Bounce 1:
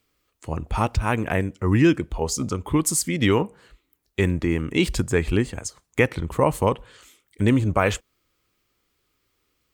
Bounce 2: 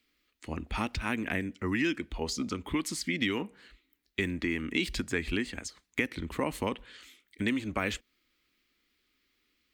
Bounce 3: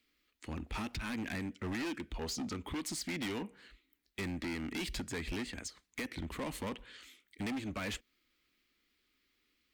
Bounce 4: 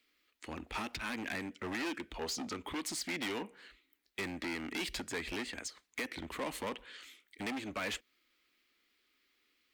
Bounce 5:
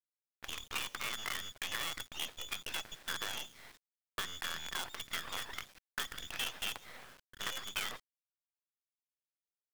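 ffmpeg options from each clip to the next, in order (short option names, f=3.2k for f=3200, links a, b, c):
-filter_complex "[0:a]equalizer=f=125:t=o:w=1:g=-10,equalizer=f=250:t=o:w=1:g=9,equalizer=f=500:t=o:w=1:g=-4,equalizer=f=1k:t=o:w=1:g=-4,equalizer=f=2k:t=o:w=1:g=8,equalizer=f=4k:t=o:w=1:g=7,equalizer=f=8k:t=o:w=1:g=-3,acrossover=split=500|5100[a][b][c];[a]acompressor=threshold=-25dB:ratio=4[d];[b]acompressor=threshold=-24dB:ratio=4[e];[c]acompressor=threshold=-35dB:ratio=4[f];[d][e][f]amix=inputs=3:normalize=0,volume=-6.5dB"
-af "volume=32.5dB,asoftclip=hard,volume=-32.5dB,volume=-2.5dB"
-af "bass=f=250:g=-12,treble=f=4k:g=-2,volume=3dB"
-filter_complex "[0:a]acrossover=split=250|720[a][b][c];[a]acompressor=threshold=-55dB:ratio=4[d];[b]acompressor=threshold=-48dB:ratio=4[e];[c]acompressor=threshold=-41dB:ratio=4[f];[d][e][f]amix=inputs=3:normalize=0,lowpass=f=3.1k:t=q:w=0.5098,lowpass=f=3.1k:t=q:w=0.6013,lowpass=f=3.1k:t=q:w=0.9,lowpass=f=3.1k:t=q:w=2.563,afreqshift=-3700,acrusher=bits=7:dc=4:mix=0:aa=0.000001,volume=5dB"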